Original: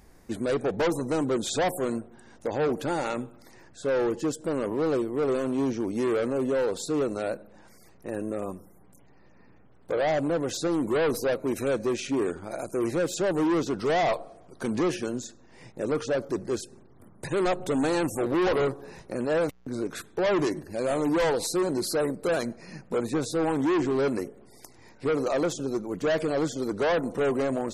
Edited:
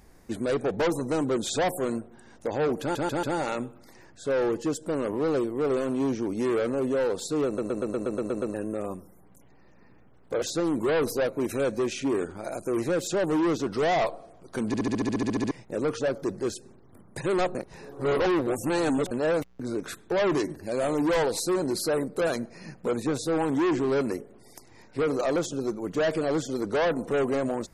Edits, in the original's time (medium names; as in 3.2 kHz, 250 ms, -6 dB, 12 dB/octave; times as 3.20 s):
2.81 s: stutter 0.14 s, 4 plays
7.04 s: stutter in place 0.12 s, 9 plays
10.00–10.49 s: delete
14.74 s: stutter in place 0.07 s, 12 plays
17.62–19.18 s: reverse